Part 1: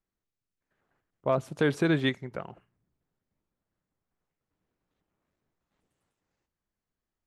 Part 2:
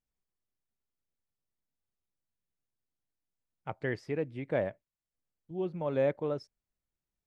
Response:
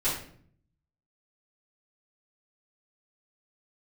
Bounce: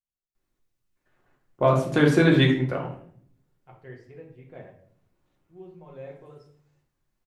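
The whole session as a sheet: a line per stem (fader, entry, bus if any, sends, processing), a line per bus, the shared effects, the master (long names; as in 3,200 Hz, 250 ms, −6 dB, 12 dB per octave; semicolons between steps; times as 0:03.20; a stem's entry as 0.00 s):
+1.0 dB, 0.35 s, send −5 dB, no processing
−16.5 dB, 0.00 s, send −6 dB, notch comb filter 290 Hz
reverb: on, RT60 0.55 s, pre-delay 3 ms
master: no processing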